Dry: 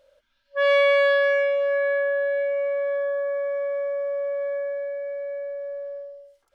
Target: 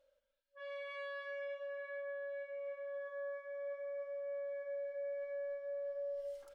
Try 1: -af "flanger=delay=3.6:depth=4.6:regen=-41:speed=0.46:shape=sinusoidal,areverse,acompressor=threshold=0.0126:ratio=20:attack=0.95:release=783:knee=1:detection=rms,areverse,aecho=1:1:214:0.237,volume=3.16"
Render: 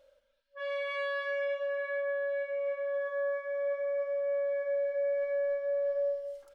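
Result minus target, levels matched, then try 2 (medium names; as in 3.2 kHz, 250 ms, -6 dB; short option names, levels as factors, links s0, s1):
compression: peak gain reduction -11 dB
-af "flanger=delay=3.6:depth=4.6:regen=-41:speed=0.46:shape=sinusoidal,areverse,acompressor=threshold=0.00335:ratio=20:attack=0.95:release=783:knee=1:detection=rms,areverse,aecho=1:1:214:0.237,volume=3.16"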